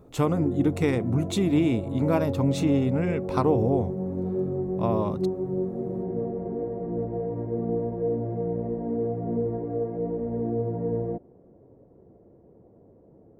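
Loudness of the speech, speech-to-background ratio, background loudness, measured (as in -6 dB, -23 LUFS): -25.5 LUFS, 4.5 dB, -30.0 LUFS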